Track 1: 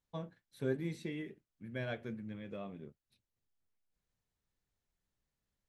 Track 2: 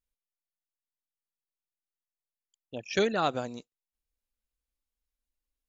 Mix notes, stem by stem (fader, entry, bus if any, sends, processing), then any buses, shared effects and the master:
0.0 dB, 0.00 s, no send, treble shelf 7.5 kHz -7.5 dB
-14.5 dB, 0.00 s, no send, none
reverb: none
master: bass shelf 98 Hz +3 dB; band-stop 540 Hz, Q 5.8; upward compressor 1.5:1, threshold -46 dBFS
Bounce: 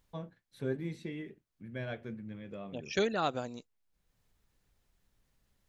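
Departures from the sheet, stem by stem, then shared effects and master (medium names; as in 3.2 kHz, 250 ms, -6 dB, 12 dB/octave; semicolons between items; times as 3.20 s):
stem 2 -14.5 dB -> -4.0 dB; master: missing band-stop 540 Hz, Q 5.8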